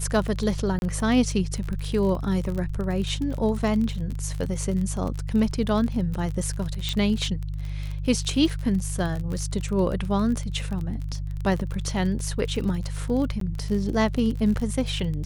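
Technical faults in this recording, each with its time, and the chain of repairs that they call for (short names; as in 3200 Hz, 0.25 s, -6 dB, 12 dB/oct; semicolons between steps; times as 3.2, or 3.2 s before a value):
crackle 35/s -29 dBFS
hum 50 Hz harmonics 3 -30 dBFS
0.79–0.82 gap 31 ms
6.89 pop -14 dBFS
13.4–13.41 gap 13 ms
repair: de-click; de-hum 50 Hz, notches 3; interpolate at 0.79, 31 ms; interpolate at 13.4, 13 ms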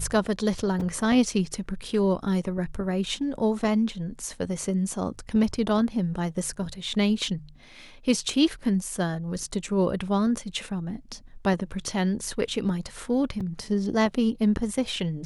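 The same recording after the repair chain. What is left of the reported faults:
none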